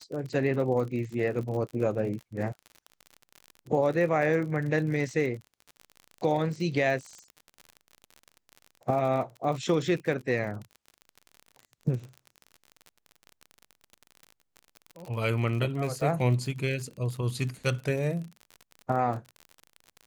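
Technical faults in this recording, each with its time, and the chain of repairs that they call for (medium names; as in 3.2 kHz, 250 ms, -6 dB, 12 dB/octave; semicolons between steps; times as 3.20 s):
crackle 47 per s -35 dBFS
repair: de-click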